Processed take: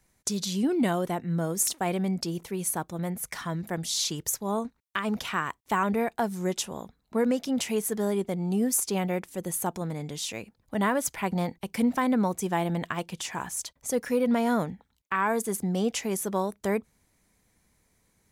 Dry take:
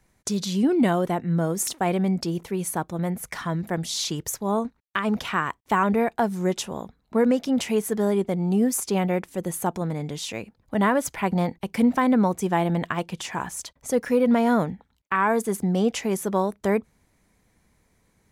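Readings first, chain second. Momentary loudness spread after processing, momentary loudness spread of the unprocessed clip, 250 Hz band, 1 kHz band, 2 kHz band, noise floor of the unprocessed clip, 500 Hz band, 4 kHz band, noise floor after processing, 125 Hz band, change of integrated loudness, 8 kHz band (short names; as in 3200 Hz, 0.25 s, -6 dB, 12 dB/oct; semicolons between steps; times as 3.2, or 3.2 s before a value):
8 LU, 10 LU, -5.0 dB, -4.5 dB, -3.5 dB, -67 dBFS, -5.0 dB, -1.0 dB, -71 dBFS, -5.0 dB, -4.0 dB, +1.0 dB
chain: high shelf 3800 Hz +7.5 dB; gain -5 dB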